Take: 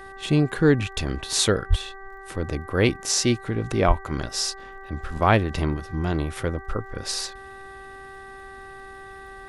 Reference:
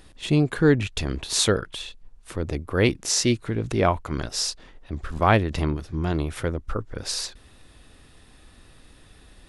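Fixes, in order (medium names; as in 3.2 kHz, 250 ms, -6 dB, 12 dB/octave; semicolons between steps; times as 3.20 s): de-click; de-hum 388.6 Hz, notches 5; de-plosive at 1.69/3.87 s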